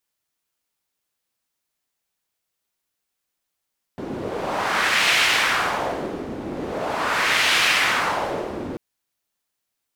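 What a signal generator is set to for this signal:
wind from filtered noise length 4.79 s, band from 310 Hz, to 2,500 Hz, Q 1.4, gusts 2, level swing 12.5 dB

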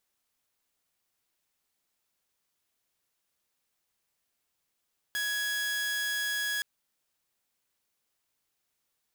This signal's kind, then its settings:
tone saw 1,670 Hz −26.5 dBFS 1.47 s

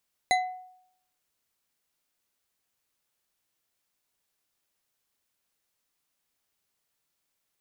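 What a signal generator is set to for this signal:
struck glass bar, lowest mode 738 Hz, decay 0.72 s, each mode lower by 3.5 dB, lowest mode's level −19 dB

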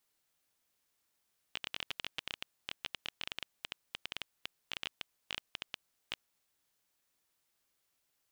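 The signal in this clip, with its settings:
Geiger counter clicks 12 per second −19.5 dBFS 4.63 s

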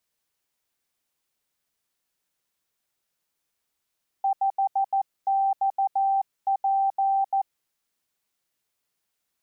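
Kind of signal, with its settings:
Morse code "5XP" 14 words per minute 782 Hz −19.5 dBFS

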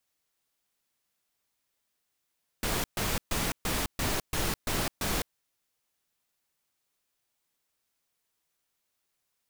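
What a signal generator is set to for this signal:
noise bursts pink, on 0.21 s, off 0.13 s, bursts 8, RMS −29.5 dBFS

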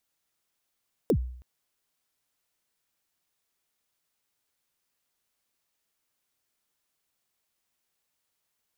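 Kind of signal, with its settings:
synth kick length 0.32 s, from 540 Hz, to 62 Hz, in 75 ms, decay 0.63 s, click on, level −17 dB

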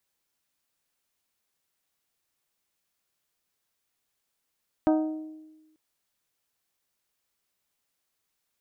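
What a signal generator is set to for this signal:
struck glass bell, lowest mode 312 Hz, modes 6, decay 1.19 s, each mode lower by 5 dB, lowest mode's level −18 dB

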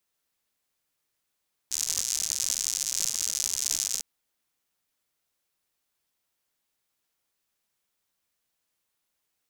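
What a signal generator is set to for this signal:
rain-like ticks over hiss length 2.30 s, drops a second 120, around 6,400 Hz, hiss −26 dB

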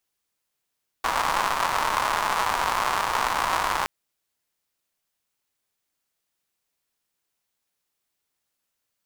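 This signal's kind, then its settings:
rain-like ticks over hiss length 2.82 s, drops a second 240, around 1,000 Hz, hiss −15 dB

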